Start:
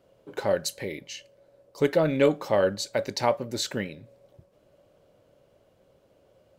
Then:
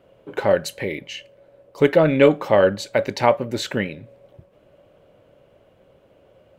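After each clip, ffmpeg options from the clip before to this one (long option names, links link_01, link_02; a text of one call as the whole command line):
ffmpeg -i in.wav -af "highshelf=frequency=3700:width_type=q:width=1.5:gain=-7,volume=7dB" out.wav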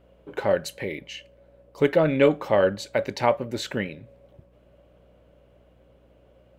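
ffmpeg -i in.wav -af "aeval=exprs='val(0)+0.002*(sin(2*PI*60*n/s)+sin(2*PI*2*60*n/s)/2+sin(2*PI*3*60*n/s)/3+sin(2*PI*4*60*n/s)/4+sin(2*PI*5*60*n/s)/5)':channel_layout=same,volume=-4.5dB" out.wav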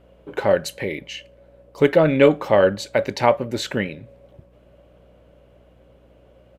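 ffmpeg -i in.wav -af "aresample=32000,aresample=44100,volume=4.5dB" out.wav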